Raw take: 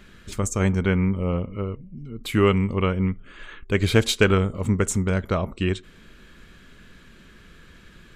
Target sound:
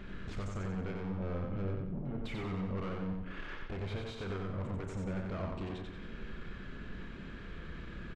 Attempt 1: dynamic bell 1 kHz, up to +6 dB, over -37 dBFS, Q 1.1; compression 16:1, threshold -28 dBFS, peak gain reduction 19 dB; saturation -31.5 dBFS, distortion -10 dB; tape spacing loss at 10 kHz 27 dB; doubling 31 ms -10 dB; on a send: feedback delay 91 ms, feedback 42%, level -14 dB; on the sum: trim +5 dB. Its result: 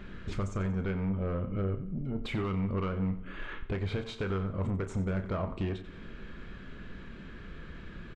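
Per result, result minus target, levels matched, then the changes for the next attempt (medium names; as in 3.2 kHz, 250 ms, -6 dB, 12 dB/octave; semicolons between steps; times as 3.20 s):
echo-to-direct -10.5 dB; saturation: distortion -6 dB
change: feedback delay 91 ms, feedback 42%, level -3.5 dB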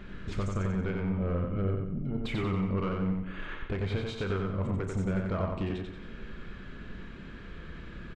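saturation: distortion -6 dB
change: saturation -42 dBFS, distortion -3 dB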